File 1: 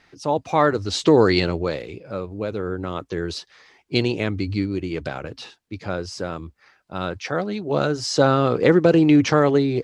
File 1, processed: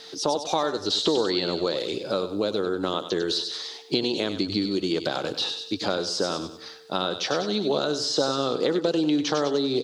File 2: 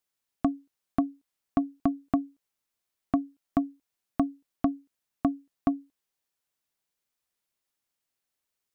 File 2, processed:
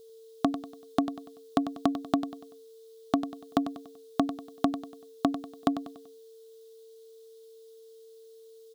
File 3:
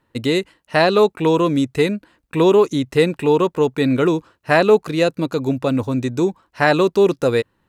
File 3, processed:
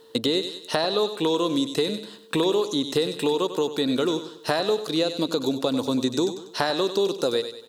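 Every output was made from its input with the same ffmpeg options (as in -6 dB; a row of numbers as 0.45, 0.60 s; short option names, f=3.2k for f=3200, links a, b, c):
-filter_complex "[0:a]highpass=250,acompressor=threshold=-31dB:ratio=6,aeval=exprs='val(0)+0.00126*sin(2*PI*450*n/s)':c=same,highshelf=f=2.9k:t=q:w=3:g=8,aecho=1:1:96|192|288|384:0.251|0.103|0.0422|0.0173,acrossover=split=2500[a][b];[b]acompressor=threshold=-38dB:ratio=4:attack=1:release=60[c];[a][c]amix=inputs=2:normalize=0,volume=9dB"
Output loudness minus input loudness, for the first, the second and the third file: -4.5, -0.5, -7.0 LU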